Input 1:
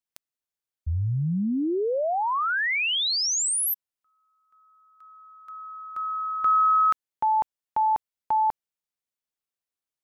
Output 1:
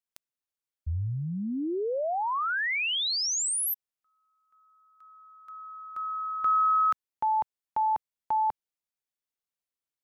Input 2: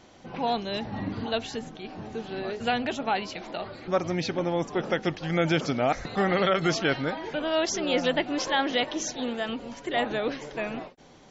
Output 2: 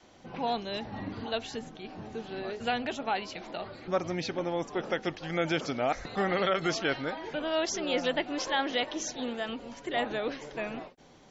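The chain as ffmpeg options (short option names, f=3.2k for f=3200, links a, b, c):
-af "adynamicequalizer=threshold=0.00891:dfrequency=150:dqfactor=0.97:tfrequency=150:tqfactor=0.97:attack=5:release=100:ratio=0.375:range=3:mode=cutabove:tftype=bell,volume=-3.5dB"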